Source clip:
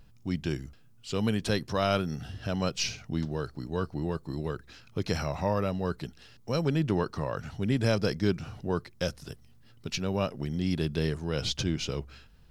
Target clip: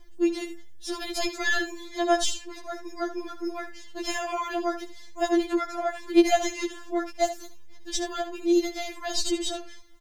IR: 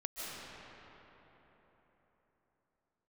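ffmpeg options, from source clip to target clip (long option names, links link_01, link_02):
-filter_complex "[0:a]asetrate=55125,aresample=44100,asplit=2[link_01][link_02];[link_02]aecho=0:1:74:0.251[link_03];[link_01][link_03]amix=inputs=2:normalize=0,afftfilt=real='re*4*eq(mod(b,16),0)':imag='im*4*eq(mod(b,16),0)':win_size=2048:overlap=0.75,volume=6dB"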